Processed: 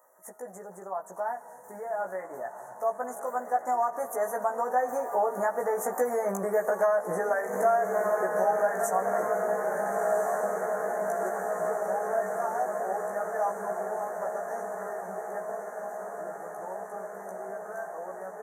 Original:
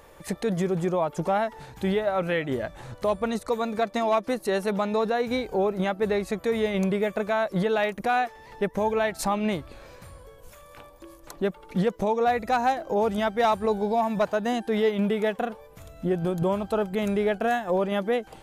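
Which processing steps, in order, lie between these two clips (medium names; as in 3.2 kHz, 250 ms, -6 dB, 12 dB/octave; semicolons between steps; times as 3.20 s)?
Doppler pass-by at 6.56 s, 25 m/s, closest 9.8 m; Chebyshev band-stop 1.8–6.1 kHz, order 4; tilt EQ +4 dB/octave; echo that smears into a reverb 1383 ms, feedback 73%, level -10 dB; reverberation RT60 2.7 s, pre-delay 16 ms, DRR 15.5 dB; compression 8:1, threshold -39 dBFS, peak gain reduction 14.5 dB; high-pass 110 Hz 12 dB/octave; peaking EQ 730 Hz +12.5 dB 1.7 oct; doubling 16 ms -2.5 dB; trim +5 dB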